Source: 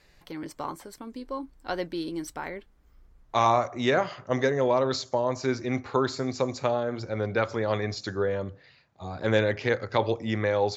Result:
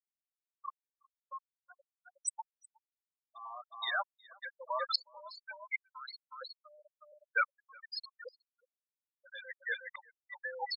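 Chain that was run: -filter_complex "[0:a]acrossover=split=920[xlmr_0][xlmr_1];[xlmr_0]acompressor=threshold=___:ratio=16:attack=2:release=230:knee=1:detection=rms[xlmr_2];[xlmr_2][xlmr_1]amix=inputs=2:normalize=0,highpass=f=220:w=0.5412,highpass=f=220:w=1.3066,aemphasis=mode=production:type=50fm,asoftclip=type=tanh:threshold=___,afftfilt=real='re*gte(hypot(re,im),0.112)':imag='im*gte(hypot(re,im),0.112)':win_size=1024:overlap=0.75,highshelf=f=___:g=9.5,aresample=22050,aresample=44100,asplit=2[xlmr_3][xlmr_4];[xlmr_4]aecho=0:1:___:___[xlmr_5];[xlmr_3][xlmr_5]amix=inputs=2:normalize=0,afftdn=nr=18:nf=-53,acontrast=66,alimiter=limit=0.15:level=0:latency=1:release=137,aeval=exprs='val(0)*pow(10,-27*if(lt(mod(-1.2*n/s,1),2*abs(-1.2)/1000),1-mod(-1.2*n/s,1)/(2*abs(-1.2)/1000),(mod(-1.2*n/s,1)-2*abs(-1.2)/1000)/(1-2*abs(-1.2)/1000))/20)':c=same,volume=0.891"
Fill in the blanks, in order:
0.0112, 0.075, 2000, 365, 0.237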